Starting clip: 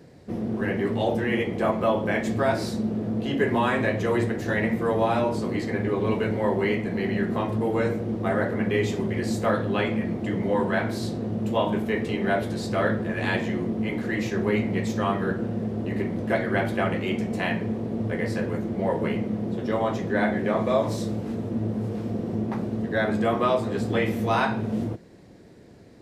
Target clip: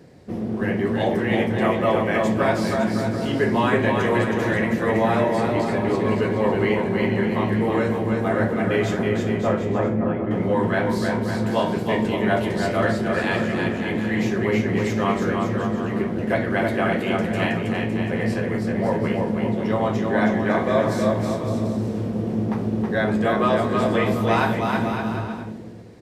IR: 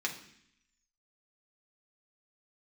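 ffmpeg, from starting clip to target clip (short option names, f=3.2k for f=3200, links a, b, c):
-filter_complex "[0:a]asettb=1/sr,asplit=3[a][b][c];[a]atrim=end=9.094[d];[b]atrim=start=9.09:end=10.31,asetpts=PTS-STARTPTS,afade=t=in:d=0.004:c=qsin,afade=t=out:st=1.216:d=0.004:c=qsin,lowpass=1.1k[e];[c]atrim=start=10.306[f];[d][e]acrossfade=d=0.004:c1=hsin:c2=qsin[g];[g][f]acrossfade=d=0.004:c1=qsin:c2=hsin,aecho=1:1:320|560|740|875|976.2:0.631|0.398|0.251|0.158|0.1,asplit=2[h][i];[1:a]atrim=start_sample=2205,asetrate=22491,aresample=44100[j];[i][j]afir=irnorm=-1:irlink=0,volume=-24.5dB[k];[h][k]amix=inputs=2:normalize=0,volume=1dB"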